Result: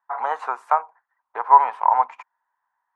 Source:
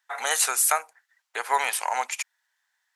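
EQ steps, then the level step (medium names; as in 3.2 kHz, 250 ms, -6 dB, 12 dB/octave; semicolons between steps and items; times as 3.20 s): resonant low-pass 1 kHz, resonance Q 4.9; bass shelf 200 Hz +4.5 dB; -1.0 dB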